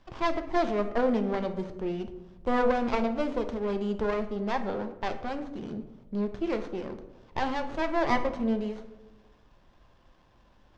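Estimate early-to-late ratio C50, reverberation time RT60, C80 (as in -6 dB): 11.0 dB, 1.1 s, 13.5 dB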